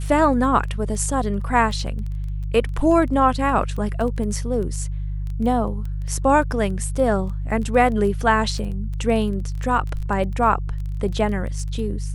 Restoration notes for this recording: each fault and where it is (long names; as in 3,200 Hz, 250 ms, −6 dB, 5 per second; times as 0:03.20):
surface crackle 13 per second −28 dBFS
mains hum 50 Hz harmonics 3 −26 dBFS